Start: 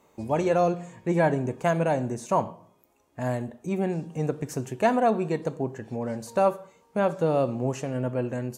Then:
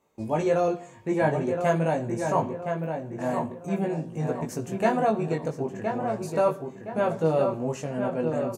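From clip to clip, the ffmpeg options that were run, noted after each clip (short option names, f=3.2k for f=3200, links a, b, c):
-filter_complex "[0:a]flanger=delay=18:depth=2.4:speed=0.44,asplit=2[a][b];[b]adelay=1017,lowpass=f=2.5k:p=1,volume=-5.5dB,asplit=2[c][d];[d]adelay=1017,lowpass=f=2.5k:p=1,volume=0.41,asplit=2[e][f];[f]adelay=1017,lowpass=f=2.5k:p=1,volume=0.41,asplit=2[g][h];[h]adelay=1017,lowpass=f=2.5k:p=1,volume=0.41,asplit=2[i][j];[j]adelay=1017,lowpass=f=2.5k:p=1,volume=0.41[k];[a][c][e][g][i][k]amix=inputs=6:normalize=0,agate=range=-8dB:threshold=-59dB:ratio=16:detection=peak,volume=2dB"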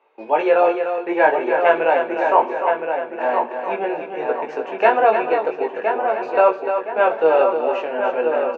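-af "highpass=f=370:w=0.5412,highpass=f=370:w=1.3066,equalizer=f=460:t=q:w=4:g=3,equalizer=f=860:t=q:w=4:g=7,equalizer=f=1.5k:t=q:w=4:g=7,equalizer=f=2.6k:t=q:w=4:g=8,lowpass=f=3.4k:w=0.5412,lowpass=f=3.4k:w=1.3066,aecho=1:1:299:0.422,volume=6.5dB"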